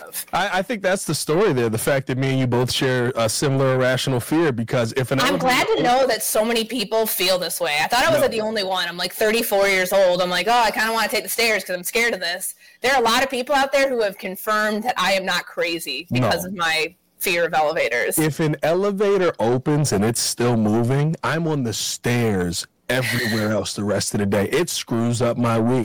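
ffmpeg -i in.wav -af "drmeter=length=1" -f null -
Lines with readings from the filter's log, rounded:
Channel 1: DR: 4.0
Overall DR: 4.0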